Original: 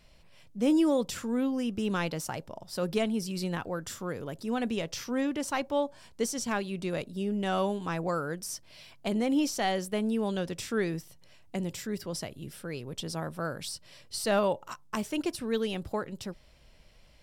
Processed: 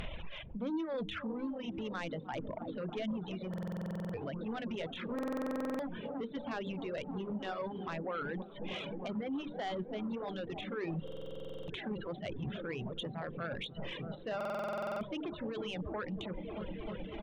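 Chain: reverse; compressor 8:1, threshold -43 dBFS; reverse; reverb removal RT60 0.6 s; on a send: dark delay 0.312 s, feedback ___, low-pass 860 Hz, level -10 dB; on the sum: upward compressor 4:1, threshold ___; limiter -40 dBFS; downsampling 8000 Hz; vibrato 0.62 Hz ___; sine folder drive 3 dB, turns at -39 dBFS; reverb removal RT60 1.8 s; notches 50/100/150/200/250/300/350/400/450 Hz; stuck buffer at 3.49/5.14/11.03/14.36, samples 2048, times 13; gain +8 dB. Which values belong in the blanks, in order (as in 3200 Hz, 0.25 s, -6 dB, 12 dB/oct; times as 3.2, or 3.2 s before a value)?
85%, -47 dBFS, 19 cents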